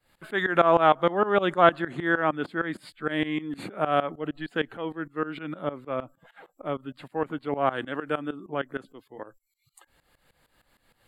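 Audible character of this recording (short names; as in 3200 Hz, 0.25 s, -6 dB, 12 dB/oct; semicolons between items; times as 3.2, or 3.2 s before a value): tremolo saw up 6.5 Hz, depth 90%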